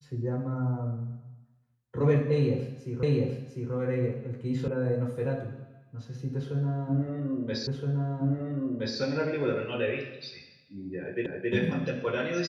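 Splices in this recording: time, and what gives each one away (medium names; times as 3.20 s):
3.03 s: repeat of the last 0.7 s
4.68 s: sound stops dead
7.67 s: repeat of the last 1.32 s
11.26 s: repeat of the last 0.27 s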